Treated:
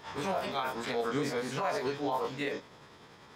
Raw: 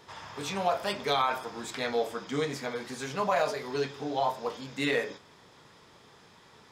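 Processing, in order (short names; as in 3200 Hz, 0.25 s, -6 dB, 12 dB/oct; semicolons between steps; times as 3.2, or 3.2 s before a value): spectral dilation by 60 ms; limiter -21 dBFS, peak gain reduction 10 dB; granular stretch 0.5×, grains 0.196 s; bell 8100 Hz -4.5 dB 2.2 oct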